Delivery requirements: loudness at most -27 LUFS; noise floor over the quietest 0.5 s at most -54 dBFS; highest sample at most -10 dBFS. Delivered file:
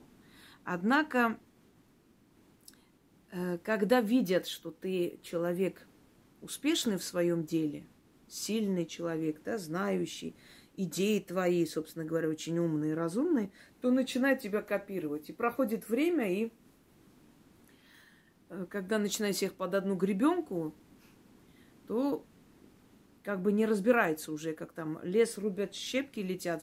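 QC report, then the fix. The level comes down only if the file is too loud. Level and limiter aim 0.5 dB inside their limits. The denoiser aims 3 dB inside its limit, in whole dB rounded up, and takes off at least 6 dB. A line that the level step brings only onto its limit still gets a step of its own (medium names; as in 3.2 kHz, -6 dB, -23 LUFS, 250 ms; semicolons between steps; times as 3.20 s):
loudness -32.5 LUFS: pass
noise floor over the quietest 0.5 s -65 dBFS: pass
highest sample -13.0 dBFS: pass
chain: none needed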